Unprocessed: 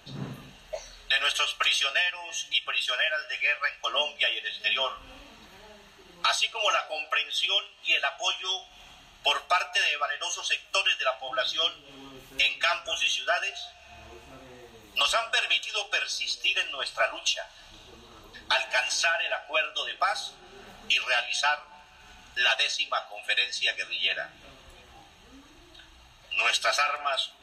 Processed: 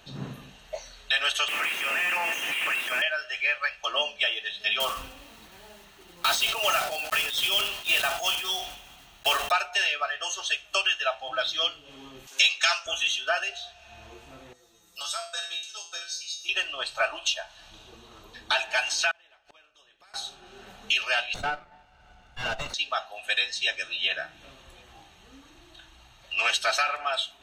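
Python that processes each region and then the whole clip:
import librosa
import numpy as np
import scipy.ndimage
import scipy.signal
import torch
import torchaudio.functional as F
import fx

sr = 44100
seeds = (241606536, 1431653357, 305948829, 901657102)

y = fx.chain(x, sr, fx.clip_1bit(),
    fx.highpass(hz=250.0, slope=12),
    fx.high_shelf_res(hz=3100.0, db=-8.5, q=3.0), at=(1.48, 3.02))
y = fx.chain(y, sr, fx.block_float(bits=3),
    fx.sustainer(db_per_s=73.0), at=(4.8, 9.53))
y = fx.chain(y, sr, fx.highpass(hz=650.0, slope=12),
    fx.peak_eq(hz=6300.0, db=13.0, octaves=1.1), at=(12.27, 12.86))
y = fx.chain(y, sr, fx.high_shelf_res(hz=4100.0, db=10.0, q=1.5),
    fx.comb_fb(f0_hz=170.0, decay_s=0.45, harmonics='all', damping=0.0, mix_pct=90),
    fx.small_body(hz=(1300.0, 3700.0), ring_ms=45, db=12), at=(14.53, 16.49))
y = fx.chain(y, sr, fx.gate_flip(shuts_db=-32.0, range_db=-37),
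    fx.spectral_comp(ratio=2.0), at=(19.11, 20.14))
y = fx.chain(y, sr, fx.lower_of_two(delay_ms=1.4),
    fx.lowpass(hz=1200.0, slope=6), at=(21.34, 22.74))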